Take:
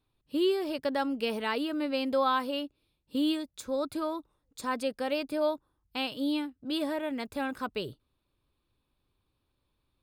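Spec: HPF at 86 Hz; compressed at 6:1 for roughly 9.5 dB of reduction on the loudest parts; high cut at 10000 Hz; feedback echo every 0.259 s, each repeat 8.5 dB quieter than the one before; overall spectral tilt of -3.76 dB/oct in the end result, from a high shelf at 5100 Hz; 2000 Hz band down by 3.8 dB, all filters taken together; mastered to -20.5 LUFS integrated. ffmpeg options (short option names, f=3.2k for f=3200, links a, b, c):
-af "highpass=86,lowpass=10k,equalizer=f=2k:t=o:g=-6,highshelf=f=5.1k:g=4,acompressor=threshold=-34dB:ratio=6,aecho=1:1:259|518|777|1036:0.376|0.143|0.0543|0.0206,volume=18dB"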